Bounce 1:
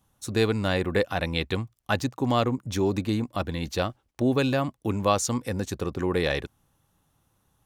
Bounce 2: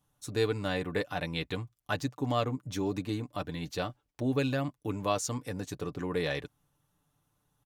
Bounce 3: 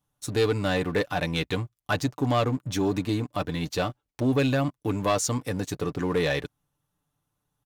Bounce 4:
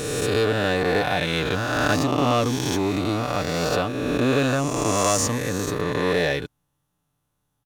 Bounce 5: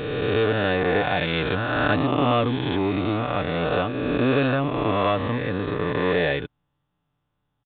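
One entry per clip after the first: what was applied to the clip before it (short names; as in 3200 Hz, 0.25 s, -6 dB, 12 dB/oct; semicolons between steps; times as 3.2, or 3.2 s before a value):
comb 6.8 ms, depth 54%; gain -7.5 dB
sample leveller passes 2
spectral swells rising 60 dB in 2.28 s
downsampling 8000 Hz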